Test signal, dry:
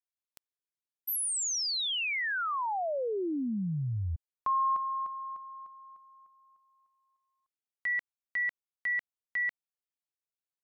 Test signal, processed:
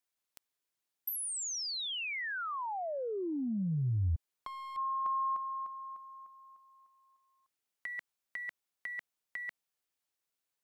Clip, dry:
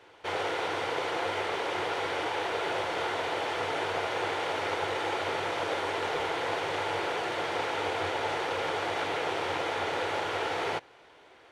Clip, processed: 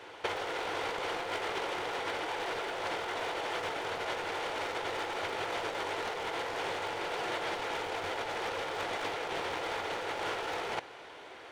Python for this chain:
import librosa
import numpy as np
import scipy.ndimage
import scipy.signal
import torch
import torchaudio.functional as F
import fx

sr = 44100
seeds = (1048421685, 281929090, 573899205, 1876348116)

y = np.minimum(x, 2.0 * 10.0 ** (-27.0 / 20.0) - x)
y = fx.low_shelf(y, sr, hz=180.0, db=-5.0)
y = fx.over_compress(y, sr, threshold_db=-36.0, ratio=-0.5)
y = y * librosa.db_to_amplitude(2.0)